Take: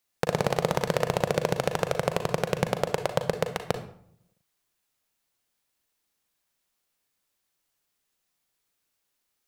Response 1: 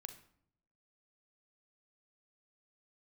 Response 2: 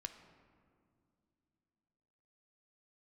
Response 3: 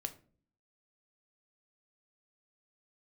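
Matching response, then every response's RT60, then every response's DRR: 1; 0.65 s, not exponential, not exponential; 7.5, 7.0, 7.5 dB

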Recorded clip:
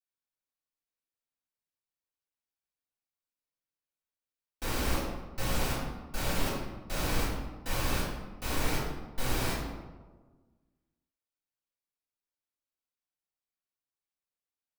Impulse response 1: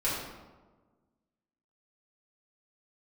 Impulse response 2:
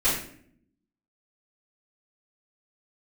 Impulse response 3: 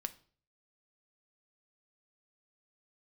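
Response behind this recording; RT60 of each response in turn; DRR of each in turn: 1; 1.3, 0.60, 0.45 s; -10.5, -13.0, 9.5 dB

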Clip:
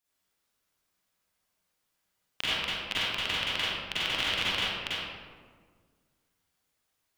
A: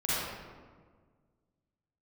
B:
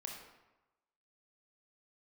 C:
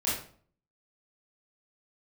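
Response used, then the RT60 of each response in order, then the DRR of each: A; 1.6, 1.0, 0.50 s; -10.5, 0.0, -9.0 dB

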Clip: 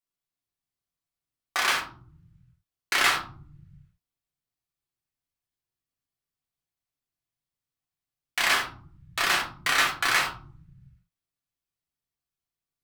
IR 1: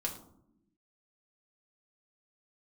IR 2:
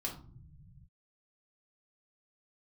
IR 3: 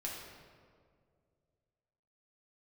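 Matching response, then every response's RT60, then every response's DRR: 2; not exponential, not exponential, 2.1 s; -0.5, -1.5, -4.0 dB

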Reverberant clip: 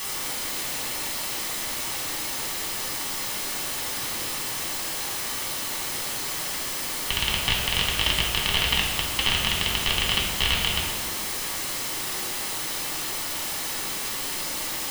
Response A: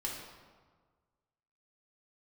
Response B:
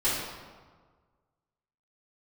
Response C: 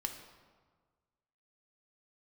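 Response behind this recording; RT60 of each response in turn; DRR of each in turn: A; 1.5, 1.5, 1.5 s; -3.5, -13.0, 3.5 dB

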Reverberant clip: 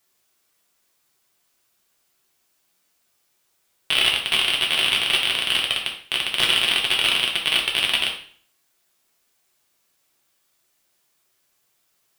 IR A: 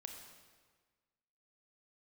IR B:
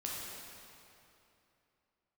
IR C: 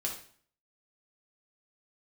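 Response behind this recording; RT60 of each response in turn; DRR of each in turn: C; 1.5, 2.9, 0.50 s; 3.0, -4.5, -1.5 dB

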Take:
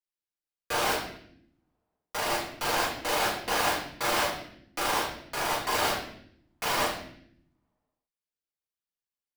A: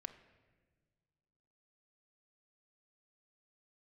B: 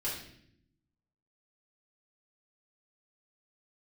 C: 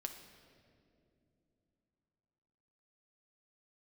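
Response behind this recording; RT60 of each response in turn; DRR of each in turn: B; 1.5, 0.70, 2.8 s; 8.5, -8.5, 4.5 dB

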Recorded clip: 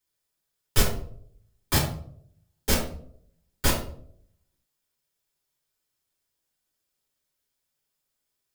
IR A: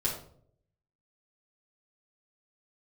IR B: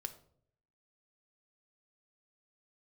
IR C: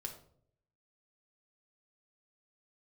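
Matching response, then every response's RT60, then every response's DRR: A; 0.60, 0.65, 0.65 s; -6.0, 8.0, 2.0 dB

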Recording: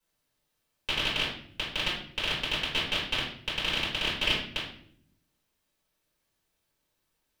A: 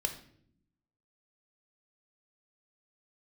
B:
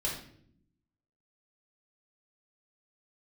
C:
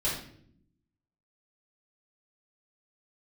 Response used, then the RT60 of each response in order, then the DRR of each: C; 0.65, 0.65, 0.65 s; 5.0, -4.5, -8.5 dB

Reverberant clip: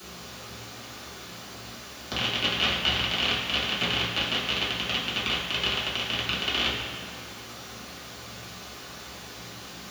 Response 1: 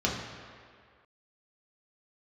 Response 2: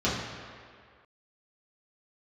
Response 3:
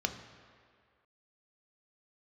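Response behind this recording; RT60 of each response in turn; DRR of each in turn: 2; 2.0, 2.0, 2.0 s; -3.5, -9.0, 6.0 dB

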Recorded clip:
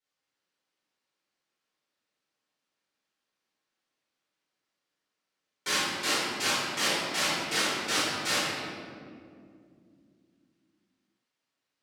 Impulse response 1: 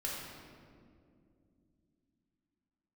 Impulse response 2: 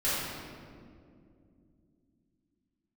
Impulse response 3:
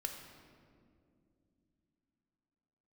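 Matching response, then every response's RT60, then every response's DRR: 2; 2.4, 2.4, 2.5 s; -4.5, -12.5, 4.0 dB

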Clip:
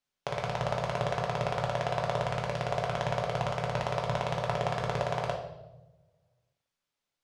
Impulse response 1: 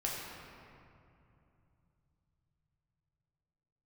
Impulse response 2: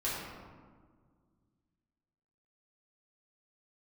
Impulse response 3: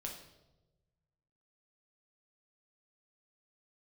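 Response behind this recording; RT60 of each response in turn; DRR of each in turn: 3; 2.7, 1.7, 1.1 s; -4.5, -9.0, -0.5 dB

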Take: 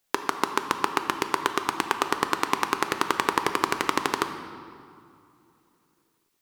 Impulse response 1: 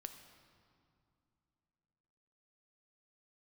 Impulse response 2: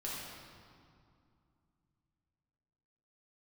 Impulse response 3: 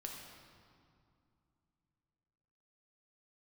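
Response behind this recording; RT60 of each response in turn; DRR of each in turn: 1; 2.7, 2.4, 2.4 s; 7.0, -7.0, -0.5 dB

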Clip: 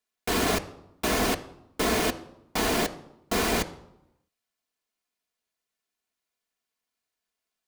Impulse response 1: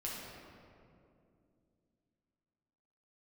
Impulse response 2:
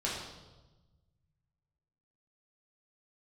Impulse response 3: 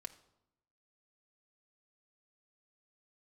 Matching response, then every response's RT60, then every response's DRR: 3; 2.5, 1.1, 0.85 s; -6.0, -6.0, 3.5 dB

